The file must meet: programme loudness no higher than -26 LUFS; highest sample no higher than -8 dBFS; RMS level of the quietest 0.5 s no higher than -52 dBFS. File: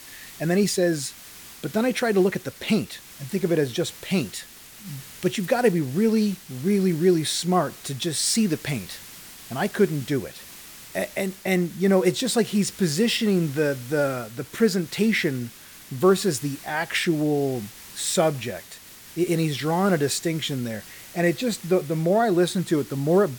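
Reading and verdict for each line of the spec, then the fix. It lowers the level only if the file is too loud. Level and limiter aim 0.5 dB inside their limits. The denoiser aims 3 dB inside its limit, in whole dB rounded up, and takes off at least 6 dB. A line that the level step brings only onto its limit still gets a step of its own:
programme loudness -24.0 LUFS: fail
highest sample -7.5 dBFS: fail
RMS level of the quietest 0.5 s -44 dBFS: fail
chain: denoiser 9 dB, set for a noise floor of -44 dBFS; gain -2.5 dB

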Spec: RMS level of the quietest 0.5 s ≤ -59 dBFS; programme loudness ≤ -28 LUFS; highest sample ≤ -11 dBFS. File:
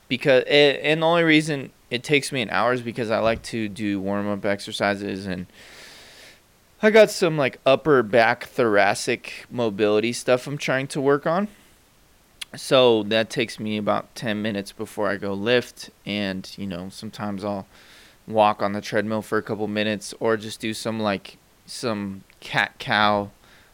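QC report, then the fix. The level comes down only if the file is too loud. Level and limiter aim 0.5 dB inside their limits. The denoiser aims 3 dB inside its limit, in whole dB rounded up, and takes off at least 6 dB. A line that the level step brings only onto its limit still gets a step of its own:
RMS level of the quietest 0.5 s -56 dBFS: fail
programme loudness -22.0 LUFS: fail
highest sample -4.5 dBFS: fail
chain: gain -6.5 dB; limiter -11.5 dBFS

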